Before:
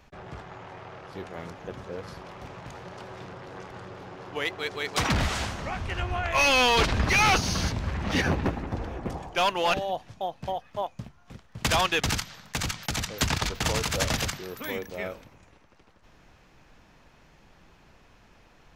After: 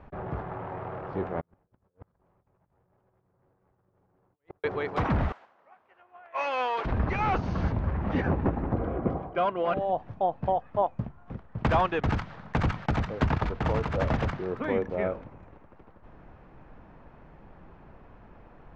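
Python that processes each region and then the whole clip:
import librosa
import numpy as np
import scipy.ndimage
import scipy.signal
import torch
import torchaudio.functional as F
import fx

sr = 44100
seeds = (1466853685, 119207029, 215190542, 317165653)

y = fx.chain(x, sr, fx.low_shelf(hz=140.0, db=9.0),
    fx.over_compress(threshold_db=-41.0, ratio=-0.5),
    fx.gate_flip(shuts_db=-36.0, range_db=-37), at=(1.4, 4.64))
y = fx.chain(y, sr, fx.highpass(hz=580.0, slope=12),
    fx.high_shelf(hz=7300.0, db=5.5),
    fx.upward_expand(threshold_db=-34.0, expansion=2.5), at=(5.32, 6.85))
y = fx.chain(y, sr, fx.lowpass(hz=4400.0, slope=12),
    fx.notch_comb(f0_hz=890.0), at=(8.73, 9.8))
y = scipy.signal.sosfilt(scipy.signal.butter(2, 1200.0, 'lowpass', fs=sr, output='sos'), y)
y = fx.rider(y, sr, range_db=5, speed_s=0.5)
y = F.gain(torch.from_numpy(y), 2.5).numpy()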